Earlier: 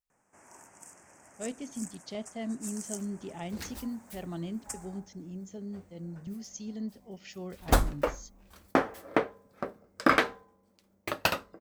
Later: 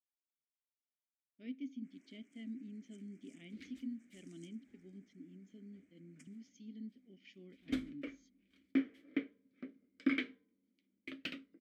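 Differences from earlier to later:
first sound: entry +1.50 s
master: add formant filter i

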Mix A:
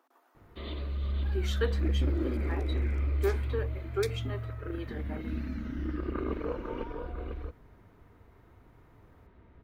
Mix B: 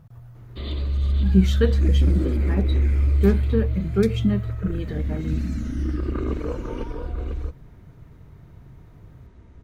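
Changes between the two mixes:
speech: remove Chebyshev high-pass with heavy ripple 250 Hz, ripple 6 dB
first sound: remove high-frequency loss of the air 300 metres
master: add low-shelf EQ 300 Hz +11 dB

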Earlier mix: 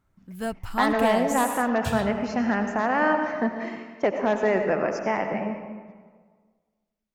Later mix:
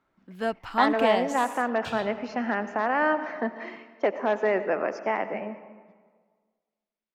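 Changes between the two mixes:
speech: send −7.0 dB
first sound +3.5 dB
master: add three-way crossover with the lows and the highs turned down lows −19 dB, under 230 Hz, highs −19 dB, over 5,200 Hz

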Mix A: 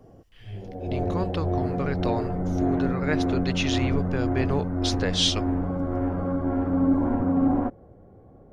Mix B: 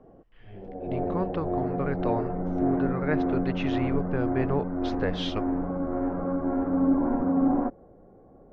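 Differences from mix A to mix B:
background: add parametric band 93 Hz −13 dB 0.98 octaves
master: add low-pass filter 1,700 Hz 12 dB per octave

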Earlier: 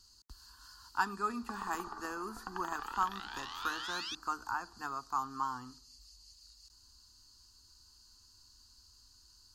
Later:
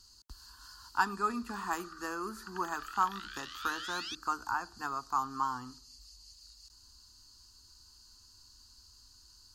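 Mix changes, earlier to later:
speech +3.0 dB
background: add Butterworth high-pass 1,200 Hz 96 dB per octave

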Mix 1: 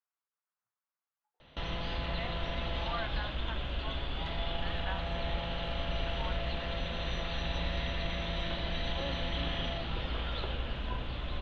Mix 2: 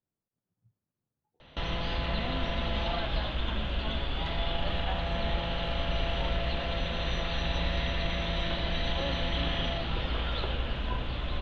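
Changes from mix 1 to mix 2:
speech: remove high-pass with resonance 1,200 Hz, resonance Q 1.7
background +4.0 dB

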